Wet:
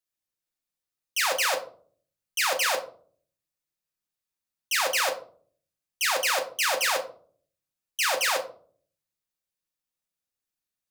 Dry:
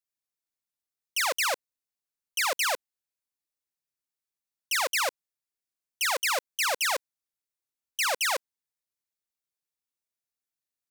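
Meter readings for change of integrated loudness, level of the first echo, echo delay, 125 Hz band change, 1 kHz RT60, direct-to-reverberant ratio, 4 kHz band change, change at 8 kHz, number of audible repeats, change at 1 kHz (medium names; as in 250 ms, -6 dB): +2.0 dB, no echo, no echo, no reading, 0.40 s, 2.0 dB, +2.0 dB, +1.5 dB, no echo, +2.0 dB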